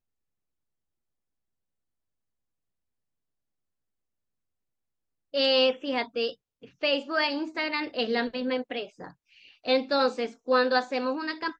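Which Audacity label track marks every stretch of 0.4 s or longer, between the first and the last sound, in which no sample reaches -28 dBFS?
6.290000	6.830000	silence
8.830000	9.680000	silence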